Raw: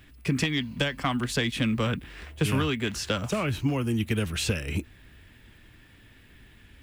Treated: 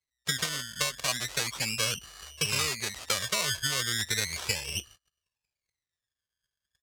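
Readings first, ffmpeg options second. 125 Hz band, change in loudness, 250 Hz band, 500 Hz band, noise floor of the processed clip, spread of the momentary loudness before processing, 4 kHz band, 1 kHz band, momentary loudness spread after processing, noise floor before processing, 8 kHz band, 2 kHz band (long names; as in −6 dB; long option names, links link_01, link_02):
−11.5 dB, −1.5 dB, −17.0 dB, −8.0 dB, below −85 dBFS, 4 LU, +3.5 dB, −4.0 dB, 5 LU, −55 dBFS, +8.5 dB, 0.0 dB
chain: -af "aemphasis=mode=reproduction:type=riaa,agate=range=-33dB:threshold=-31dB:ratio=16:detection=peak,aecho=1:1:1.8:0.67,acrusher=samples=21:mix=1:aa=0.000001:lfo=1:lforange=12.6:lforate=0.35,bandpass=frequency=5900:width_type=q:width=0.76:csg=0,volume=6.5dB"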